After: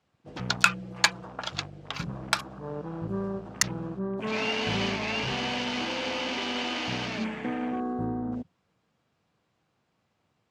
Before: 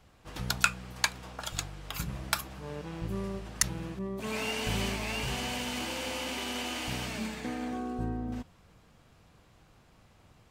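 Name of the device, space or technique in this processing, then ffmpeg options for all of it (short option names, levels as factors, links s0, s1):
over-cleaned archive recording: -filter_complex "[0:a]highpass=130,lowpass=7100,afwtdn=0.00562,asettb=1/sr,asplit=3[s0][s1][s2];[s0]atrim=end=0.654[s3];[s1]atrim=start=0.65:end=1.25,asetpts=PTS-STARTPTS,afade=t=in:d=0.004:c=qsin,afade=t=out:st=0.596:d=0.004:c=qsin,aecho=1:1:5.9:0.77,atrim=end_sample=26460[s4];[s2]atrim=start=1.246[s5];[s3][s4]acrossfade=d=0.004:c1=hsin:c2=qsin[s6];[s6][s5]acrossfade=d=0.004:c1=qsin:c2=hsin,volume=1.78"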